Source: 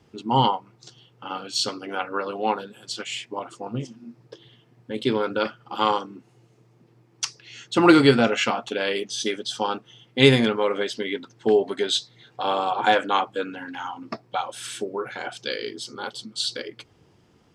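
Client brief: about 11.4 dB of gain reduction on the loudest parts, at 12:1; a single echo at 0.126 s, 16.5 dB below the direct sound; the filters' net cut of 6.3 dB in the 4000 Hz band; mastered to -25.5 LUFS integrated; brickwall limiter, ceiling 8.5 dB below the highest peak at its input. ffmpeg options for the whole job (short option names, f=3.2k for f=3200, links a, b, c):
-af "equalizer=f=4k:t=o:g=-8,acompressor=threshold=-21dB:ratio=12,alimiter=limit=-19dB:level=0:latency=1,aecho=1:1:126:0.15,volume=6.5dB"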